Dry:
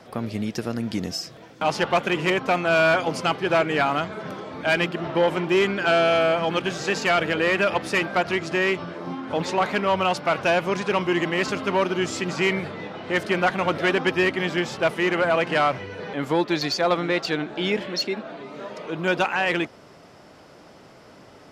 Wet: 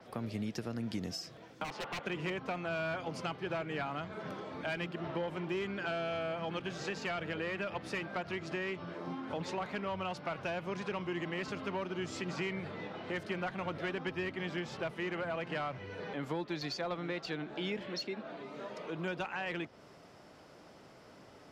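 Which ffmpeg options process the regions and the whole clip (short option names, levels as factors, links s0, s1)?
-filter_complex "[0:a]asettb=1/sr,asplit=3[s0][s1][s2];[s0]atrim=end=1.644[s3];[s1]atrim=start=1.64:end=2.06,asetpts=PTS-STARTPTS,afade=t=in:d=0.004:c=qsin,afade=t=out:st=0.416:d=0.004:c=qsin,bandpass=f=1000:t=q:w=0.56,aeval=exprs='0.075*(abs(mod(val(0)/0.075+3,4)-2)-1)':c=same[s4];[s2]atrim=start=2.056[s5];[s3][s4]acrossfade=d=0.004:c1=hsin:c2=qsin[s6];[s6][s5]acrossfade=d=0.004:c1=qsin:c2=hsin,acrossover=split=160[s7][s8];[s8]acompressor=threshold=0.0355:ratio=3[s9];[s7][s9]amix=inputs=2:normalize=0,adynamicequalizer=threshold=0.00316:dfrequency=6200:dqfactor=0.7:tfrequency=6200:tqfactor=0.7:attack=5:release=100:ratio=0.375:range=3.5:mode=cutabove:tftype=highshelf,volume=0.398"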